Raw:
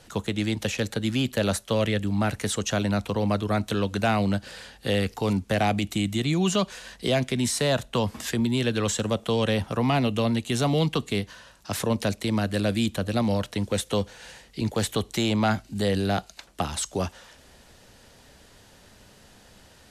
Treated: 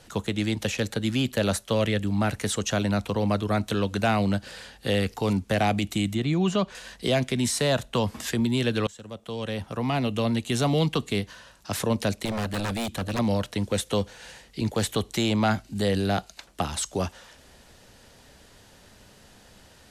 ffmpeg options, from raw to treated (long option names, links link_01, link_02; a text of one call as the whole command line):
ffmpeg -i in.wav -filter_complex "[0:a]asettb=1/sr,asplit=3[link_01][link_02][link_03];[link_01]atrim=end=6.144[link_04];[link_02]atrim=start=6.14:end=6.75,asetpts=PTS-STARTPTS,afade=type=in:duration=0.004:curve=qsin,afade=type=out:start_time=0.606:duration=0.004:curve=qsin,lowpass=frequency=2300:poles=1[link_05];[link_03]atrim=start=6.746[link_06];[link_04][link_05]acrossfade=duration=0.004:curve1=hsin:curve2=qsin[link_07];[link_07][link_06]acrossfade=duration=0.004:curve1=qsin:curve2=hsin,asettb=1/sr,asplit=3[link_08][link_09][link_10];[link_08]atrim=end=12.254[link_11];[link_09]atrim=start=12.25:end=13.19,asetpts=PTS-STARTPTS,afade=type=in:duration=0.004:curve=qsin,afade=type=out:start_time=0.936:duration=0.004:curve=qsin,aeval=exprs='0.0708*(abs(mod(val(0)/0.0708+3,4)-2)-1)':channel_layout=same[link_12];[link_10]atrim=start=13.186[link_13];[link_11][link_12]acrossfade=duration=0.004:curve1=hsin:curve2=qsin[link_14];[link_14][link_13]acrossfade=duration=0.004:curve1=qsin:curve2=hsin,asplit=2[link_15][link_16];[link_15]atrim=end=8.87,asetpts=PTS-STARTPTS,afade=type=out:start_time=8.866:duration=0.004:curve=hsin:silence=0.0707946[link_17];[link_16]atrim=start=8.87,asetpts=PTS-STARTPTS,afade=type=in:duration=1.58:silence=0.0707946[link_18];[link_17][link_18]concat=n=2:v=0:a=1" out.wav